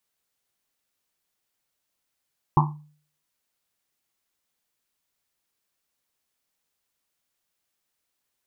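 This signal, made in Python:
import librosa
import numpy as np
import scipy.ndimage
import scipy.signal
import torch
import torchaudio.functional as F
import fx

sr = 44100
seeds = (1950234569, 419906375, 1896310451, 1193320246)

y = fx.risset_drum(sr, seeds[0], length_s=1.1, hz=150.0, decay_s=0.49, noise_hz=960.0, noise_width_hz=310.0, noise_pct=40)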